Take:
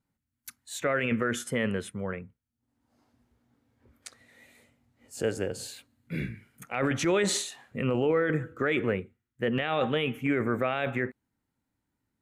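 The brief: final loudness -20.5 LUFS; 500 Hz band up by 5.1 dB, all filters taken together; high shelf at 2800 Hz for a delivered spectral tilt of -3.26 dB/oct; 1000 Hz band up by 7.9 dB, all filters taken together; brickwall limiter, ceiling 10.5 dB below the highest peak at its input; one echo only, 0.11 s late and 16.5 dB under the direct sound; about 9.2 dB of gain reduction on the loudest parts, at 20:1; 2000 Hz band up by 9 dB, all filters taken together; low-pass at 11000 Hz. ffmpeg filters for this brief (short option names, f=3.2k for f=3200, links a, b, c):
-af "lowpass=11k,equalizer=f=500:t=o:g=4,equalizer=f=1k:t=o:g=6.5,equalizer=f=2k:t=o:g=6,highshelf=f=2.8k:g=7.5,acompressor=threshold=-25dB:ratio=20,alimiter=limit=-23dB:level=0:latency=1,aecho=1:1:110:0.15,volume=14dB"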